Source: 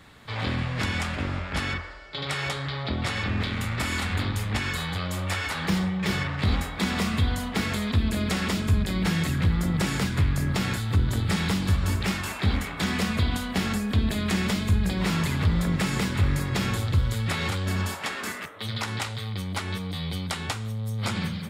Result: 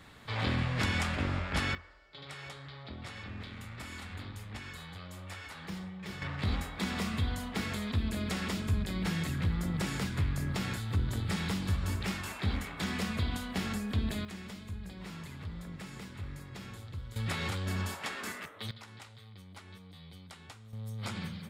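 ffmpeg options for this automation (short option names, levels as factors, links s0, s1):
-af "asetnsamples=n=441:p=0,asendcmd='1.75 volume volume -16dB;6.22 volume volume -8dB;14.25 volume volume -19dB;17.16 volume volume -7dB;18.71 volume volume -20dB;20.73 volume volume -10dB',volume=0.708"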